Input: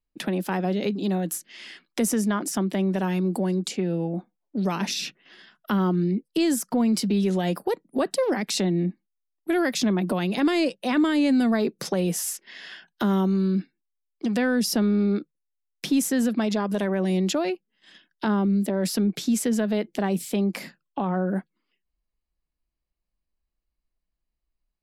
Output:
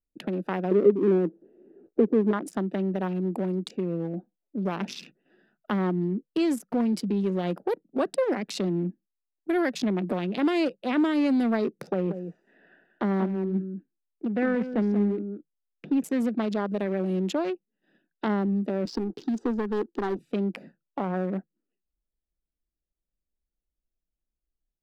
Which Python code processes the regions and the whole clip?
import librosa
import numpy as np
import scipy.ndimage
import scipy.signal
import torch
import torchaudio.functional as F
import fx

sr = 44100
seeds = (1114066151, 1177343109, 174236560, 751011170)

y = fx.chain(x, sr, fx.crossing_spikes(level_db=-19.5),
    fx.lowpass_res(hz=400.0, q=4.1), at=(0.71, 2.33))
y = fx.chain(y, sr, fx.lowpass(hz=2300.0, slope=12),
    fx.echo_single(ms=185, db=-8.0), at=(11.92, 16.04))
y = fx.chain(y, sr, fx.lowpass(hz=5700.0, slope=24),
    fx.leveller(passes=2),
    fx.fixed_phaser(hz=610.0, stages=6), at=(18.85, 20.19))
y = fx.wiener(y, sr, points=41)
y = fx.bass_treble(y, sr, bass_db=-5, treble_db=-8)